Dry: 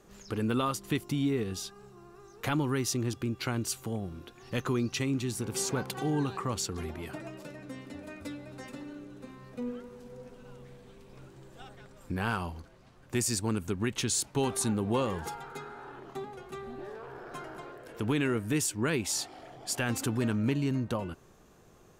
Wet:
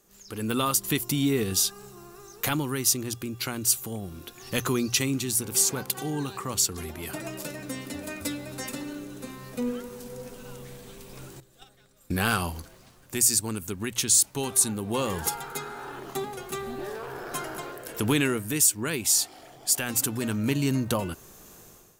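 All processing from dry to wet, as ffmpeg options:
ffmpeg -i in.wav -filter_complex "[0:a]asettb=1/sr,asplit=3[link_01][link_02][link_03];[link_01]atrim=end=11.404[link_04];[link_02]atrim=start=11.4:end=12.43,asetpts=PTS-STARTPTS,afade=type=in:duration=0.004:curve=qsin,afade=type=out:start_time=1.026:duration=0.004:curve=qsin,equalizer=frequency=3800:width=6.5:gain=5.5,agate=range=-16dB:threshold=-44dB:ratio=16:release=100:detection=peak,bandreject=frequency=940:width=7.9[link_05];[link_03]atrim=start=12.426[link_06];[link_04][link_05]acrossfade=duration=0.004:curve1=hsin:curve2=qsin[link_07];[link_07][link_06]acrossfade=duration=0.004:curve1=qsin:curve2=hsin,aemphasis=mode=production:type=75fm,bandreject=frequency=60:width_type=h:width=6,bandreject=frequency=120:width_type=h:width=6,dynaudnorm=framelen=120:gausssize=7:maxgain=15dB,volume=-7.5dB" out.wav

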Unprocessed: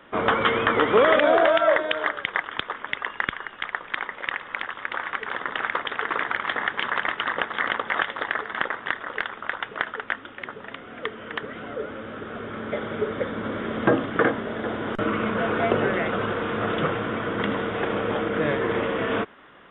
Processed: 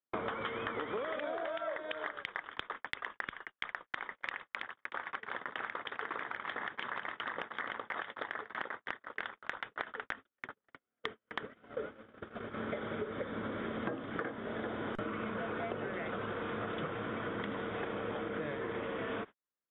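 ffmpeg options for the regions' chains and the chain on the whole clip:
ffmpeg -i in.wav -filter_complex "[0:a]asettb=1/sr,asplit=3[link_01][link_02][link_03];[link_01]atrim=end=4.624[link_04];[link_02]atrim=start=4.62:end=9.23,asetpts=PTS-STARTPTS,afade=type=in:duration=0.004:curve=qsin,afade=type=out:start_time=4.606:duration=0.004:curve=qsin,highpass=52,acompressor=threshold=-30dB:ratio=1.5:attack=3.2:release=140:knee=1:detection=peak,highshelf=frequency=2100:gain=-2.5[link_05];[link_03]atrim=start=9.226[link_06];[link_04][link_05]acrossfade=duration=0.004:curve1=hsin:curve2=qsin[link_07];[link_07][link_06]acrossfade=duration=0.004:curve1=qsin:curve2=hsin,agate=range=-51dB:threshold=-32dB:ratio=16:detection=peak,bandreject=frequency=2800:width=23,acompressor=threshold=-35dB:ratio=12" out.wav

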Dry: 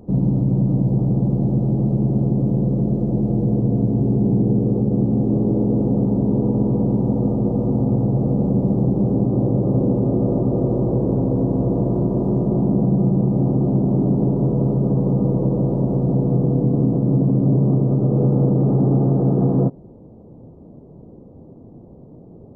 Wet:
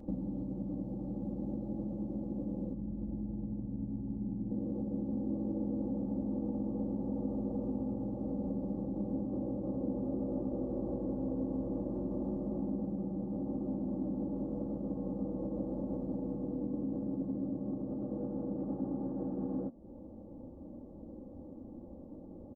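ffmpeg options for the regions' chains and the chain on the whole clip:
ffmpeg -i in.wav -filter_complex "[0:a]asettb=1/sr,asplit=3[link_01][link_02][link_03];[link_01]atrim=end=2.734[link_04];[link_02]atrim=start=2.73:end=4.51,asetpts=PTS-STARTPTS,afade=type=in:duration=0.004:curve=qsin,afade=type=out:start_time=1.776:duration=0.004:curve=qsin,lowpass=1000,equalizer=frequency=480:width=0.91:gain=-14[link_05];[link_03]atrim=start=4.506[link_06];[link_04][link_05]acrossfade=duration=0.004:curve1=hsin:curve2=qsin[link_07];[link_07][link_06]acrossfade=duration=0.004:curve1=qsin:curve2=hsin,acompressor=threshold=-27dB:ratio=6,aecho=1:1:3.6:0.83,bandreject=frequency=227.8:width_type=h:width=4,bandreject=frequency=455.6:width_type=h:width=4,bandreject=frequency=683.4:width_type=h:width=4,bandreject=frequency=911.2:width_type=h:width=4,bandreject=frequency=1139:width_type=h:width=4,bandreject=frequency=1366.8:width_type=h:width=4,bandreject=frequency=1594.6:width_type=h:width=4,bandreject=frequency=1822.4:width_type=h:width=4,bandreject=frequency=2050.2:width_type=h:width=4,bandreject=frequency=2278:width_type=h:width=4,bandreject=frequency=2505.8:width_type=h:width=4,bandreject=frequency=2733.6:width_type=h:width=4,bandreject=frequency=2961.4:width_type=h:width=4,bandreject=frequency=3189.2:width_type=h:width=4,bandreject=frequency=3417:width_type=h:width=4,bandreject=frequency=3644.8:width_type=h:width=4,bandreject=frequency=3872.6:width_type=h:width=4,bandreject=frequency=4100.4:width_type=h:width=4,bandreject=frequency=4328.2:width_type=h:width=4,bandreject=frequency=4556:width_type=h:width=4,bandreject=frequency=4783.8:width_type=h:width=4,bandreject=frequency=5011.6:width_type=h:width=4,bandreject=frequency=5239.4:width_type=h:width=4,bandreject=frequency=5467.2:width_type=h:width=4,bandreject=frequency=5695:width_type=h:width=4,bandreject=frequency=5922.8:width_type=h:width=4,bandreject=frequency=6150.6:width_type=h:width=4,bandreject=frequency=6378.4:width_type=h:width=4,bandreject=frequency=6606.2:width_type=h:width=4,volume=-7.5dB" out.wav

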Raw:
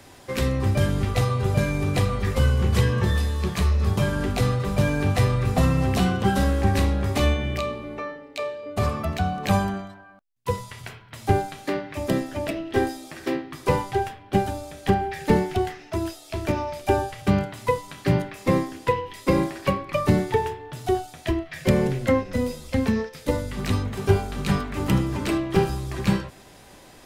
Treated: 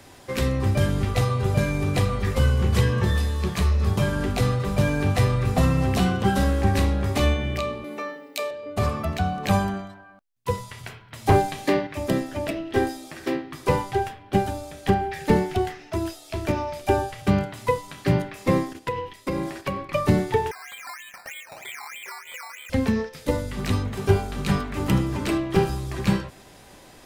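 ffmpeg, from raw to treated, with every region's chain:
ffmpeg -i in.wav -filter_complex "[0:a]asettb=1/sr,asplit=3[link_01][link_02][link_03];[link_01]atrim=end=7.844[link_04];[link_02]atrim=start=7.84:end=8.51,asetpts=PTS-STARTPTS,afade=type=in:duration=0.004:curve=qsin,afade=type=out:start_time=0.666:duration=0.004:curve=qsin,highpass=frequency=200:width_type=q:width=2,aemphasis=mode=production:type=bsi[link_05];[link_03]atrim=start=8.506[link_06];[link_04][link_05]acrossfade=duration=0.004:curve1=hsin:curve2=qsin[link_07];[link_07][link_06]acrossfade=duration=0.004:curve1=qsin:curve2=hsin,asettb=1/sr,asplit=3[link_08][link_09][link_10];[link_08]atrim=end=11.264[link_11];[link_09]atrim=start=11.26:end=11.87,asetpts=PTS-STARTPTS,afade=type=in:duration=0.004:curve=qsin,afade=type=out:start_time=0.606:duration=0.004:curve=qsin,bandreject=frequency=1400:width=6,acontrast=39,volume=10.5dB,asoftclip=hard,volume=-10.5dB[link_12];[link_10]atrim=start=11.866[link_13];[link_11][link_12]acrossfade=duration=0.004:curve1=hsin:curve2=qsin[link_14];[link_14][link_13]acrossfade=duration=0.004:curve1=qsin:curve2=hsin,asettb=1/sr,asplit=3[link_15][link_16][link_17];[link_15]atrim=end=18.734[link_18];[link_16]atrim=start=18.73:end=19.89,asetpts=PTS-STARTPTS,afade=type=in:duration=0.004:curve=qsin,afade=type=out:start_time=1.156:duration=0.004:curve=qsin,agate=range=-8dB:threshold=-40dB:ratio=16:release=100:detection=peak,acompressor=threshold=-24dB:ratio=3:attack=3.2:release=140:knee=1:detection=peak[link_19];[link_17]atrim=start=19.886[link_20];[link_18][link_19]acrossfade=duration=0.004:curve1=hsin:curve2=qsin[link_21];[link_21][link_20]acrossfade=duration=0.004:curve1=qsin:curve2=hsin,asettb=1/sr,asplit=3[link_22][link_23][link_24];[link_22]atrim=end=20.514[link_25];[link_23]atrim=start=20.51:end=22.7,asetpts=PTS-STARTPTS,afade=type=in:duration=0.004:curve=qsin,afade=type=out:start_time=2.186:duration=0.004:curve=qsin,lowpass=frequency=2100:width_type=q:width=0.5098,lowpass=frequency=2100:width_type=q:width=0.6013,lowpass=frequency=2100:width_type=q:width=0.9,lowpass=frequency=2100:width_type=q:width=2.563,afreqshift=-2500,acompressor=threshold=-36dB:ratio=6:attack=3.2:release=140:knee=1:detection=peak,acrusher=samples=11:mix=1:aa=0.000001:lfo=1:lforange=6.6:lforate=3.2[link_26];[link_24]atrim=start=22.696[link_27];[link_25][link_26]acrossfade=duration=0.004:curve1=hsin:curve2=qsin[link_28];[link_28][link_27]acrossfade=duration=0.004:curve1=qsin:curve2=hsin" out.wav

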